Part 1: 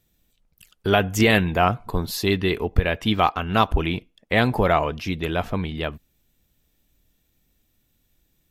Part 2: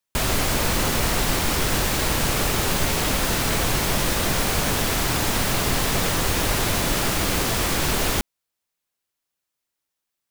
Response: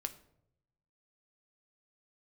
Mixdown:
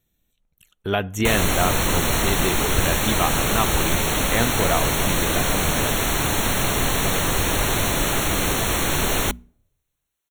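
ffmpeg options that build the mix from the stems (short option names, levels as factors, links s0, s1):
-filter_complex "[0:a]volume=0.562,asplit=2[s0][s1];[s1]volume=0.133[s2];[1:a]bandreject=f=60:t=h:w=6,bandreject=f=120:t=h:w=6,bandreject=f=180:t=h:w=6,bandreject=f=240:t=h:w=6,adelay=1100,volume=1.06,asplit=2[s3][s4];[s4]volume=0.1[s5];[2:a]atrim=start_sample=2205[s6];[s2][s5]amix=inputs=2:normalize=0[s7];[s7][s6]afir=irnorm=-1:irlink=0[s8];[s0][s3][s8]amix=inputs=3:normalize=0,asuperstop=centerf=4900:order=20:qfactor=4.3"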